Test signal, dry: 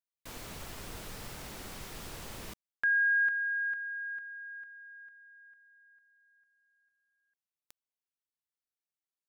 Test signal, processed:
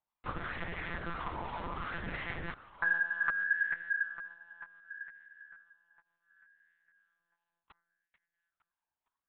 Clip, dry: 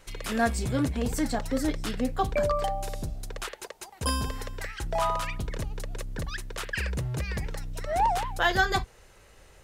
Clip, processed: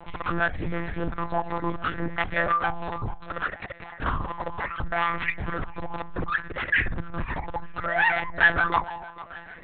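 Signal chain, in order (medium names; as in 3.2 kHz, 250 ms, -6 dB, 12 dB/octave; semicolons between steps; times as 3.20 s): reverb removal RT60 0.95 s; treble shelf 2.1 kHz -8.5 dB; de-hum 338.6 Hz, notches 6; in parallel at -1.5 dB: compression, threshold -38 dBFS; on the sum: hard clipper -26.5 dBFS; harmonic tremolo 2.9 Hz, depth 50%, crossover 740 Hz; on a send: thinning echo 453 ms, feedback 55%, high-pass 190 Hz, level -16 dB; on the sum: monotone LPC vocoder at 8 kHz 170 Hz; sweeping bell 0.67 Hz 910–2000 Hz +16 dB; trim +3 dB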